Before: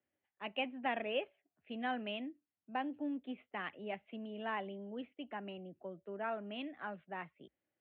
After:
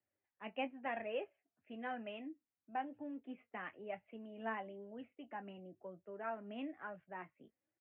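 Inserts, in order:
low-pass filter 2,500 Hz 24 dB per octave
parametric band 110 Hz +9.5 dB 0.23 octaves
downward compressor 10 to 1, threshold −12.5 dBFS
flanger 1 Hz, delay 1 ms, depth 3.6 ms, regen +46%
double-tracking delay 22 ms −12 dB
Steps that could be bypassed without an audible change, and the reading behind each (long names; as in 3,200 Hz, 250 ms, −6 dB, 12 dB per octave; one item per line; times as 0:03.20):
downward compressor, threshold −12.5 dBFS: peak of its input −23.0 dBFS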